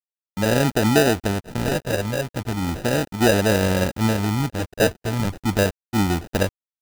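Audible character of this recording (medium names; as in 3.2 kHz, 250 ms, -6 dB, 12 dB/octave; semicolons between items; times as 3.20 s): a quantiser's noise floor 6-bit, dither none; phasing stages 12, 0.36 Hz, lowest notch 310–2000 Hz; aliases and images of a low sample rate 1.1 kHz, jitter 0%; AAC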